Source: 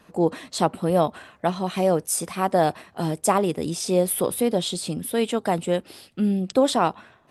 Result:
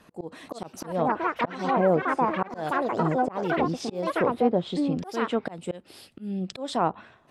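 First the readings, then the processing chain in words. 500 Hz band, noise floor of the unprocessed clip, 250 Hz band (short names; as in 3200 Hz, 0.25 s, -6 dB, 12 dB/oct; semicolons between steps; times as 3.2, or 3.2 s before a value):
-4.0 dB, -57 dBFS, -3.5 dB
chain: echoes that change speed 0.392 s, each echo +6 st, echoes 3; auto swell 0.327 s; treble ducked by the level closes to 1400 Hz, closed at -18.5 dBFS; gain -1 dB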